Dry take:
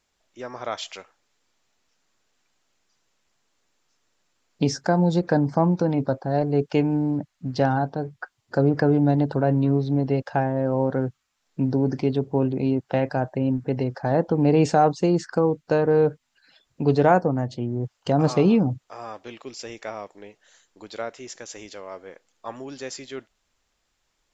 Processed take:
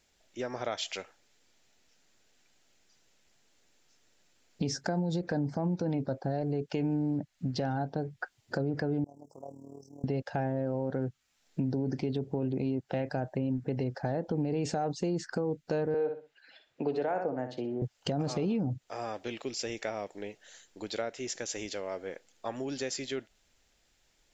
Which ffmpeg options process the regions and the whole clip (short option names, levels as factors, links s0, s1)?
-filter_complex "[0:a]asettb=1/sr,asplit=3[s0][s1][s2];[s0]atrim=end=9.044[s3];[s1]atrim=start=9.04:end=10.04,asetpts=PTS-STARTPTS,afade=t=in:d=0.004:c=qsin,afade=t=out:st=0.996:d=0.004:c=qsin,aderivative,tremolo=f=38:d=0.75,asuperstop=centerf=2500:order=20:qfactor=0.6[s4];[s2]atrim=start=10.036[s5];[s3][s4]acrossfade=d=0.004:c1=hsin:c2=qsin[s6];[s6][s5]acrossfade=d=0.004:c1=qsin:c2=hsin,asettb=1/sr,asplit=3[s7][s8][s9];[s7]atrim=end=15.944[s10];[s8]atrim=start=15.94:end=17.82,asetpts=PTS-STARTPTS,afade=t=in:d=0.004:c=qsin,afade=t=out:st=1.876:d=0.004:c=qsin,acrossover=split=320 3400:gain=0.126 1 0.224[s11][s12][s13];[s11][s12][s13]amix=inputs=3:normalize=0,aecho=1:1:62|124|186:0.316|0.0759|0.0182,atrim=end_sample=82908[s14];[s9]atrim=start=17.816[s15];[s10][s14]acrossfade=d=0.004:c1=hsin:c2=qsin[s16];[s16][s15]acrossfade=d=0.004:c1=qsin:c2=hsin,equalizer=f=1100:w=2.6:g=-8.5,alimiter=limit=0.158:level=0:latency=1:release=38,acompressor=threshold=0.0158:ratio=2.5,volume=1.5"